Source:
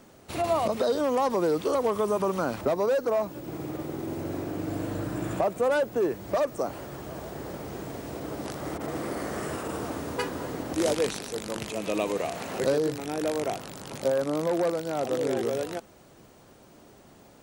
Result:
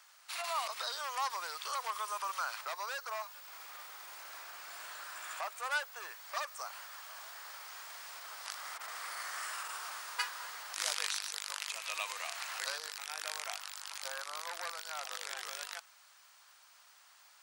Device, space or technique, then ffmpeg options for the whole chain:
headphones lying on a table: -af "highpass=f=1.1k:w=0.5412,highpass=f=1.1k:w=1.3066,equalizer=f=4.8k:t=o:w=0.51:g=4,volume=-1dB"

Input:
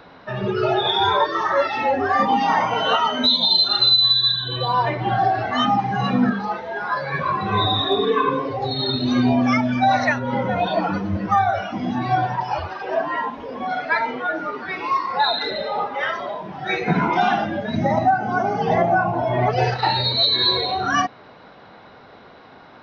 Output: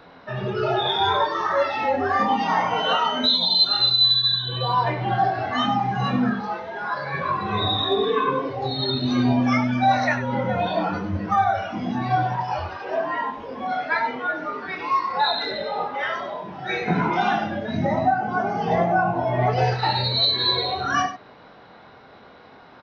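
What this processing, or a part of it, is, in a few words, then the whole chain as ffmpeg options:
slapback doubling: -filter_complex "[0:a]asettb=1/sr,asplit=3[a][b][c];[a]atrim=end=17.804[d];[b]atrim=start=17.8:end=18.5,asetpts=PTS-STARTPTS,afade=t=in:d=0.004:c=qsin,afade=t=out:st=0.696:d=0.004:c=qsin,lowpass=5.3k[e];[c]atrim=start=18.496[f];[d][e]acrossfade=d=0.004:c1=hsin:c2=qsin[g];[g][f]acrossfade=d=0.004:c1=qsin:c2=hsin,asplit=3[h][i][j];[i]adelay=23,volume=-6dB[k];[j]adelay=97,volume=-10.5dB[l];[h][k][l]amix=inputs=3:normalize=0,volume=-3.5dB"

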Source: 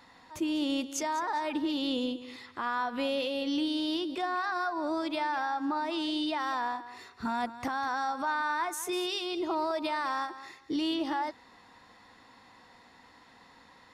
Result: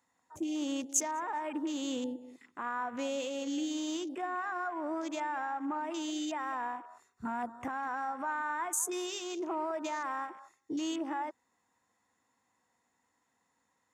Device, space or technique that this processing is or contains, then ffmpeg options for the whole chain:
budget condenser microphone: -af "afwtdn=0.00794,highpass=68,highshelf=f=5.6k:t=q:w=3:g=8,volume=-4dB"

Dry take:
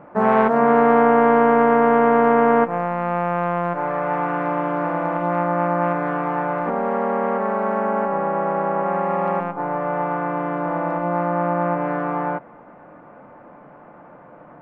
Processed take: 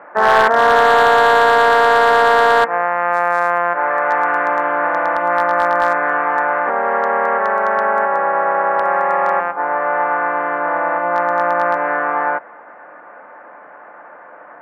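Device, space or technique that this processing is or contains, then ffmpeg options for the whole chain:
megaphone: -af "highpass=560,lowpass=2.7k,equalizer=f=1.7k:t=o:w=0.57:g=9,asoftclip=type=hard:threshold=-10.5dB,volume=6.5dB"

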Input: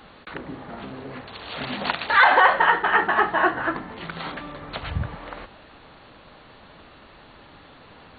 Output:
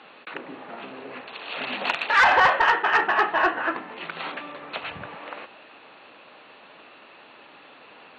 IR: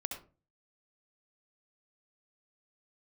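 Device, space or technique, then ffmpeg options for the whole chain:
intercom: -af "highpass=320,lowpass=4.1k,equalizer=f=2.6k:t=o:w=0.27:g=8.5,asoftclip=type=tanh:threshold=-9.5dB"

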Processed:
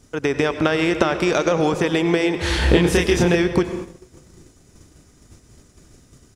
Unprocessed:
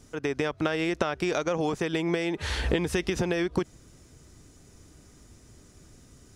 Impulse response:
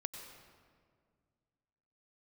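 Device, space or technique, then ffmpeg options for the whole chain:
keyed gated reverb: -filter_complex "[0:a]asplit=3[a][b][c];[1:a]atrim=start_sample=2205[d];[b][d]afir=irnorm=-1:irlink=0[e];[c]apad=whole_len=280254[f];[e][f]sidechaingate=range=-33dB:threshold=-50dB:ratio=16:detection=peak,volume=6.5dB[g];[a][g]amix=inputs=2:normalize=0,asplit=3[h][i][j];[h]afade=t=out:st=2.6:d=0.02[k];[i]asplit=2[l][m];[m]adelay=29,volume=-2.5dB[n];[l][n]amix=inputs=2:normalize=0,afade=t=in:st=2.6:d=0.02,afade=t=out:st=3.35:d=0.02[o];[j]afade=t=in:st=3.35:d=0.02[p];[k][o][p]amix=inputs=3:normalize=0"

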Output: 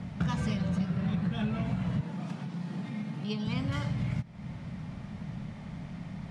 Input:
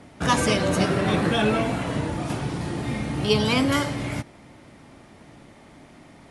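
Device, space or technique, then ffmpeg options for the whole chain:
jukebox: -filter_complex "[0:a]lowpass=5.7k,lowshelf=f=240:t=q:w=3:g=9,acompressor=threshold=-29dB:ratio=6,asettb=1/sr,asplit=3[a][b][c];[a]atrim=end=2.014[d];[b]atrim=start=2.01:end=3.47,asetpts=PTS-STARTPTS,afade=t=in:d=0.004:c=qsin,afade=t=out:st=1.456:d=0.004:c=qsin,highpass=f=180:w=0.5412,highpass=f=180:w=1.3066[e];[c]atrim=start=3.466[f];[d][e]acrossfade=d=0.004:c1=hsin:c2=qsin[g];[g][f]acrossfade=d=0.004:c1=qsin:c2=hsin"

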